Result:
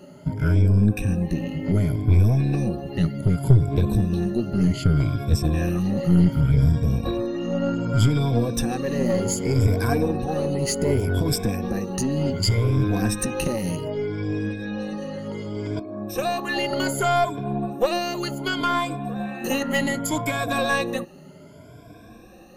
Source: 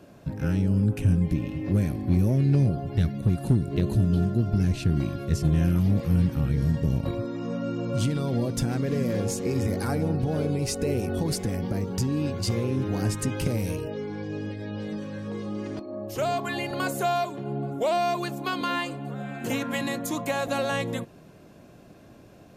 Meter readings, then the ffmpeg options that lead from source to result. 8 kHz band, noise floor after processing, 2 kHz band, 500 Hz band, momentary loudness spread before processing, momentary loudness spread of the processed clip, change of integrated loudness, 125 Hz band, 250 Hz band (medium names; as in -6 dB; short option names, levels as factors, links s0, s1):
+5.5 dB, -45 dBFS, +5.5 dB, +4.0 dB, 11 LU, 10 LU, +3.5 dB, +3.5 dB, +3.0 dB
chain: -af "afftfilt=real='re*pow(10,19/40*sin(2*PI*(1.7*log(max(b,1)*sr/1024/100)/log(2)-(0.66)*(pts-256)/sr)))':imag='im*pow(10,19/40*sin(2*PI*(1.7*log(max(b,1)*sr/1024/100)/log(2)-(0.66)*(pts-256)/sr)))':win_size=1024:overlap=0.75,aeval=exprs='(tanh(3.16*val(0)+0.55)-tanh(0.55))/3.16':c=same,volume=1.5"